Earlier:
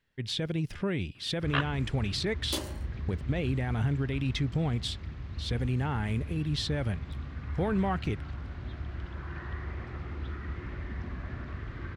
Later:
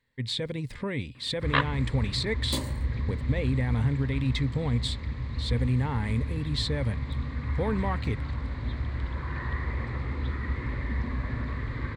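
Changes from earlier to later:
first sound +5.5 dB
second sound: remove high-pass filter 290 Hz
master: add EQ curve with evenly spaced ripples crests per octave 0.99, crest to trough 9 dB

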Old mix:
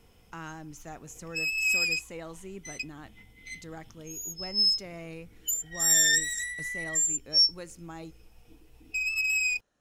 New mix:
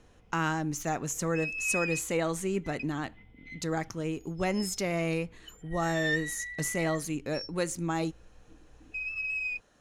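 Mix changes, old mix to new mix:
speech +12.0 dB
background: add high-frequency loss of the air 390 metres

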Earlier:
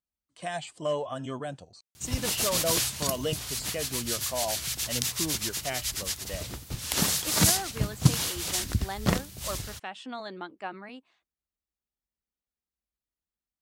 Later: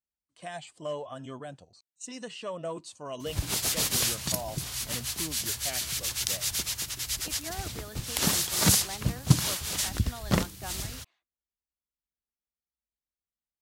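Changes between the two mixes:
speech −5.5 dB
background: entry +1.25 s

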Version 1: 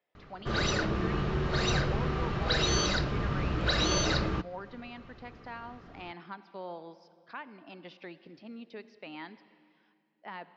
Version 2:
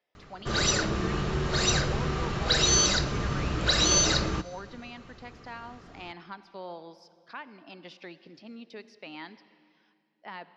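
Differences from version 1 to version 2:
background: send on
master: remove high-frequency loss of the air 170 metres

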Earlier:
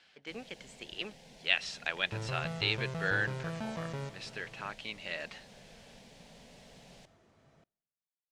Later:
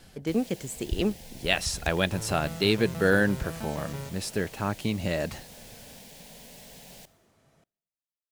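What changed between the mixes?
speech: remove resonant band-pass 2,700 Hz, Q 1.1
first sound +5.0 dB
master: remove high-frequency loss of the air 84 metres

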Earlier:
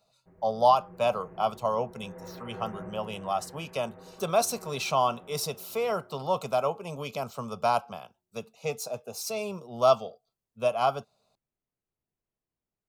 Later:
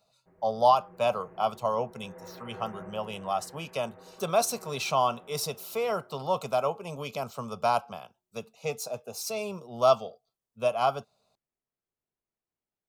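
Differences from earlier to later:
speech: add low-shelf EQ 190 Hz +8.5 dB
master: add low-shelf EQ 240 Hz −8.5 dB

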